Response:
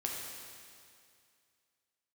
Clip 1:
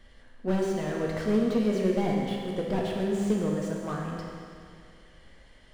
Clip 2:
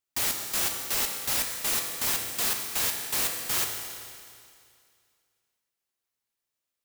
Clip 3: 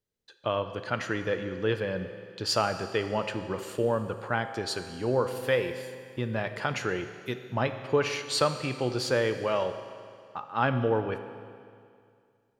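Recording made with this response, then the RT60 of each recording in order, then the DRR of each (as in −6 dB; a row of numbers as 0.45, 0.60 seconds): 1; 2.3, 2.3, 2.3 seconds; −2.0, 2.0, 8.0 decibels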